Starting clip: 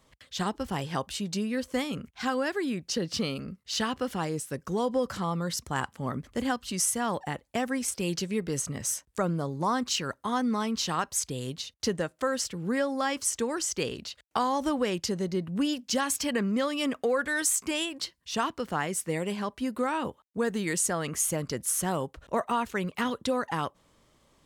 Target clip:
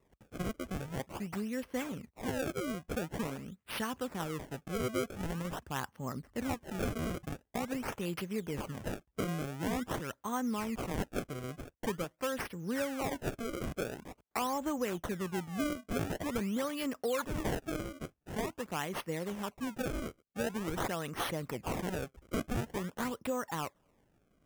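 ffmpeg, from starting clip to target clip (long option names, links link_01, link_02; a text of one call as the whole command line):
ffmpeg -i in.wav -af "acrusher=samples=28:mix=1:aa=0.000001:lfo=1:lforange=44.8:lforate=0.46,equalizer=frequency=4200:width=3:gain=-7,volume=-6.5dB" out.wav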